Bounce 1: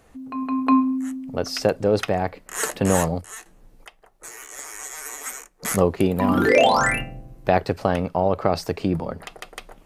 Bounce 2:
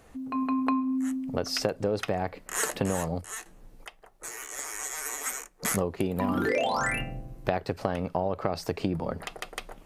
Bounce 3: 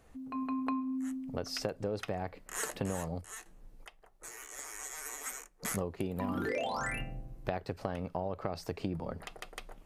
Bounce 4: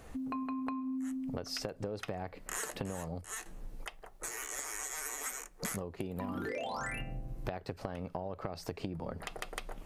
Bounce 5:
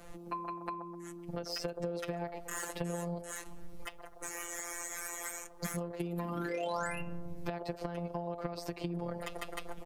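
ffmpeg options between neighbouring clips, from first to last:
-af "acompressor=threshold=0.0631:ratio=6"
-af "lowshelf=f=87:g=6,volume=0.398"
-af "acompressor=threshold=0.00501:ratio=5,volume=2.99"
-filter_complex "[0:a]afftfilt=real='hypot(re,im)*cos(PI*b)':imag='0':win_size=1024:overlap=0.75,acrossover=split=340|1100[s0][s1][s2];[s1]aecho=1:1:128|256|384|512|640|768:0.708|0.311|0.137|0.0603|0.0265|0.0117[s3];[s2]asoftclip=type=tanh:threshold=0.0211[s4];[s0][s3][s4]amix=inputs=3:normalize=0,volume=1.68"

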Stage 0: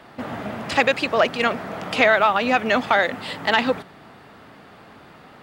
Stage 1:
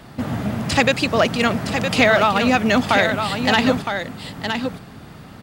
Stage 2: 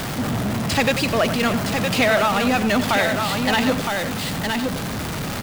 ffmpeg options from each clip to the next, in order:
-filter_complex "[0:a]bass=f=250:g=14,treble=f=4000:g=10,asplit=2[s0][s1];[s1]aecho=0:1:964:0.447[s2];[s0][s2]amix=inputs=2:normalize=0"
-filter_complex "[0:a]aeval=exprs='val(0)+0.5*0.15*sgn(val(0))':c=same,asplit=2[s0][s1];[s1]adelay=93.29,volume=0.282,highshelf=f=4000:g=-2.1[s2];[s0][s2]amix=inputs=2:normalize=0,volume=0.531"

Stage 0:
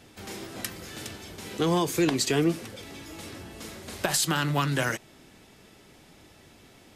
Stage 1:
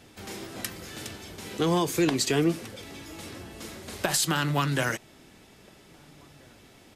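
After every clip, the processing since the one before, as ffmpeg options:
-filter_complex "[0:a]asplit=2[s0][s1];[s1]adelay=1633,volume=0.0355,highshelf=f=4000:g=-36.7[s2];[s0][s2]amix=inputs=2:normalize=0"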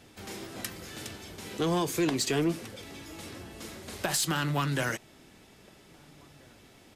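-af "asoftclip=type=tanh:threshold=0.15,volume=0.794"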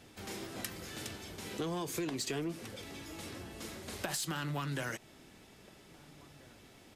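-af "acompressor=threshold=0.0251:ratio=6,volume=0.794"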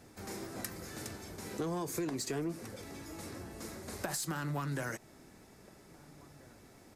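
-af "equalizer=f=3100:t=o:w=0.73:g=-11.5,volume=1.12"

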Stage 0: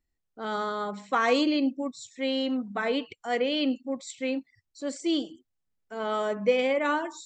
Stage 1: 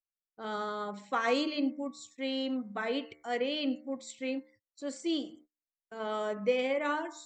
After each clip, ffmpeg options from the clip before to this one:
-af "bandreject=f=75.35:t=h:w=4,bandreject=f=150.7:t=h:w=4,bandreject=f=226.05:t=h:w=4,bandreject=f=301.4:t=h:w=4,bandreject=f=376.75:t=h:w=4,bandreject=f=452.1:t=h:w=4,bandreject=f=527.45:t=h:w=4,bandreject=f=602.8:t=h:w=4,bandreject=f=678.15:t=h:w=4,bandreject=f=753.5:t=h:w=4,bandreject=f=828.85:t=h:w=4,bandreject=f=904.2:t=h:w=4,bandreject=f=979.55:t=h:w=4,bandreject=f=1054.9:t=h:w=4,bandreject=f=1130.25:t=h:w=4,bandreject=f=1205.6:t=h:w=4,bandreject=f=1280.95:t=h:w=4,bandreject=f=1356.3:t=h:w=4,bandreject=f=1431.65:t=h:w=4,bandreject=f=1507:t=h:w=4,bandreject=f=1582.35:t=h:w=4,bandreject=f=1657.7:t=h:w=4,bandreject=f=1733.05:t=h:w=4,bandreject=f=1808.4:t=h:w=4,bandreject=f=1883.75:t=h:w=4,bandreject=f=1959.1:t=h:w=4,bandreject=f=2034.45:t=h:w=4,bandreject=f=2109.8:t=h:w=4,bandreject=f=2185.15:t=h:w=4,bandreject=f=2260.5:t=h:w=4,agate=range=0.0398:threshold=0.00282:ratio=16:detection=peak,volume=0.562"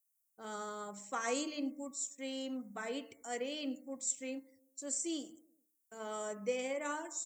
-filter_complex "[0:a]acrossover=split=940[s0][s1];[s0]aecho=1:1:100|200|300|400:0.0708|0.0425|0.0255|0.0153[s2];[s1]aexciter=amount=14.5:drive=3:freq=6000[s3];[s2][s3]amix=inputs=2:normalize=0,volume=0.422"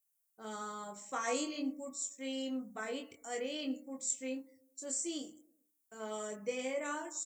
-filter_complex "[0:a]asplit=2[s0][s1];[s1]adelay=23,volume=0.631[s2];[s0][s2]amix=inputs=2:normalize=0,volume=0.891"

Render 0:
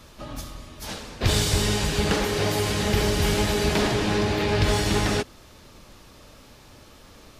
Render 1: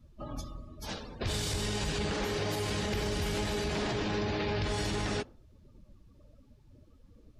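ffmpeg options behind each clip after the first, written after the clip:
-af "afftdn=nr=23:nf=-41,alimiter=limit=0.0944:level=0:latency=1:release=48,volume=0.668"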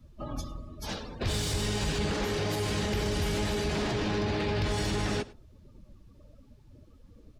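-filter_complex "[0:a]aecho=1:1:103:0.0708,acrossover=split=320[s0][s1];[s1]asoftclip=type=tanh:threshold=0.0282[s2];[s0][s2]amix=inputs=2:normalize=0,volume=1.5"

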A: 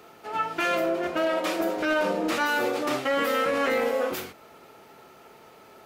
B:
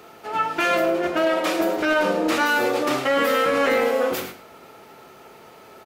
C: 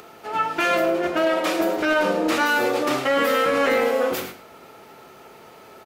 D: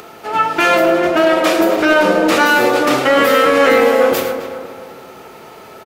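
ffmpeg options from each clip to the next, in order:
-af "aecho=1:1:105:0.266,volume=1.68"
-af "acompressor=mode=upward:threshold=0.00708:ratio=2.5"
-filter_complex "[0:a]asplit=2[s0][s1];[s1]adelay=263,lowpass=f=2300:p=1,volume=0.355,asplit=2[s2][s3];[s3]adelay=263,lowpass=f=2300:p=1,volume=0.45,asplit=2[s4][s5];[s5]adelay=263,lowpass=f=2300:p=1,volume=0.45,asplit=2[s6][s7];[s7]adelay=263,lowpass=f=2300:p=1,volume=0.45,asplit=2[s8][s9];[s9]adelay=263,lowpass=f=2300:p=1,volume=0.45[s10];[s0][s2][s4][s6][s8][s10]amix=inputs=6:normalize=0,volume=2.51"

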